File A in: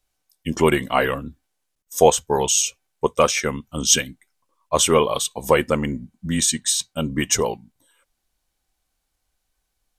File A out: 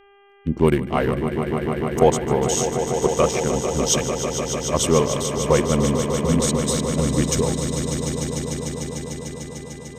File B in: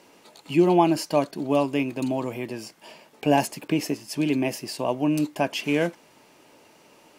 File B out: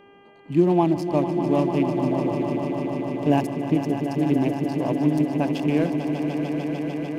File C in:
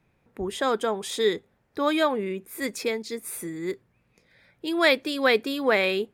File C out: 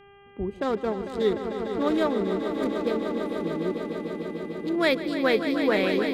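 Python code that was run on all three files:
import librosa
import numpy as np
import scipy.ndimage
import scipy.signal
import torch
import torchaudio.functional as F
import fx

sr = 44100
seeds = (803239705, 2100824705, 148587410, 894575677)

p1 = fx.wiener(x, sr, points=25)
p2 = fx.low_shelf(p1, sr, hz=320.0, db=10.5)
p3 = fx.dmg_buzz(p2, sr, base_hz=400.0, harmonics=8, level_db=-48.0, tilt_db=-5, odd_only=False)
p4 = p3 + fx.echo_swell(p3, sr, ms=149, loudest=5, wet_db=-10, dry=0)
y = p4 * librosa.db_to_amplitude(-4.5)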